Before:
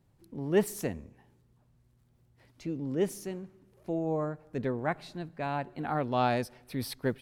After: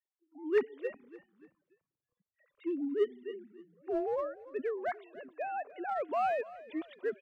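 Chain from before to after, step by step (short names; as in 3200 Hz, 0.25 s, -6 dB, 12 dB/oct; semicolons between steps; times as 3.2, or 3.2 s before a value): sine-wave speech; in parallel at -6 dB: overloaded stage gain 28 dB; on the sum: spectral noise reduction 19 dB; frequency-shifting echo 0.289 s, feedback 44%, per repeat -37 Hz, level -19 dB; gain -5.5 dB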